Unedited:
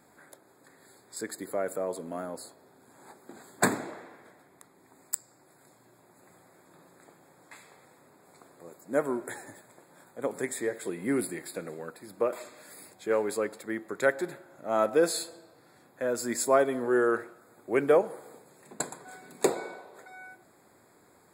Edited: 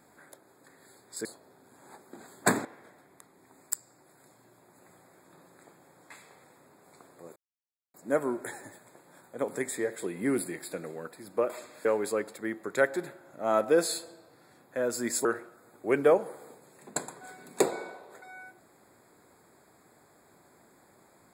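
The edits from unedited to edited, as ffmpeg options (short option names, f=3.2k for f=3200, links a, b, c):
-filter_complex "[0:a]asplit=6[a][b][c][d][e][f];[a]atrim=end=1.252[g];[b]atrim=start=2.408:end=3.812[h];[c]atrim=start=4.058:end=8.77,asetpts=PTS-STARTPTS,afade=t=out:st=4.708:d=0.004:c=hsin,apad=pad_dur=0.58[i];[d]atrim=start=8.77:end=12.682,asetpts=PTS-STARTPTS,afade=t=in:d=0.004:c=hsin[j];[e]atrim=start=13.098:end=16.502[k];[f]atrim=start=17.088[l];[g][h]acrossfade=d=0.004:c1=hsin:c2=hsin[m];[i][j]concat=n=2:v=0:a=1[n];[m][n]acrossfade=d=0.004:c1=hsin:c2=hsin[o];[o][k]acrossfade=d=0.004:c1=hsin:c2=hsin[p];[p][l]acrossfade=d=0.004:c1=hsin:c2=hsin"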